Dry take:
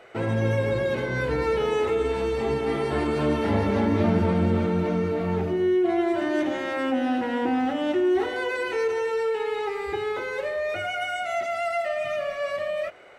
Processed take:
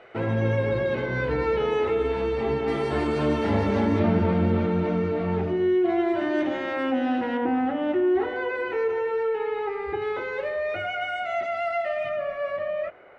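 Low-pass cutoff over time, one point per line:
3.6 kHz
from 2.68 s 7.8 kHz
from 3.99 s 3.9 kHz
from 7.37 s 2.1 kHz
from 10.02 s 3.2 kHz
from 12.09 s 1.9 kHz

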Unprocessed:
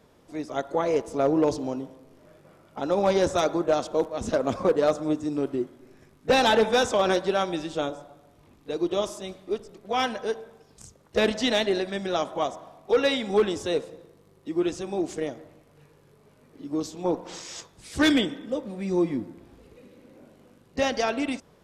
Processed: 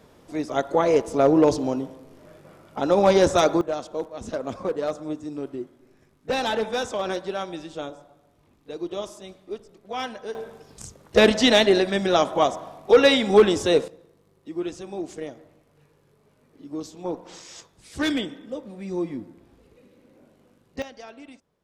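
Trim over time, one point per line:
+5 dB
from 3.61 s -5 dB
from 10.35 s +7 dB
from 13.88 s -4 dB
from 20.82 s -16.5 dB

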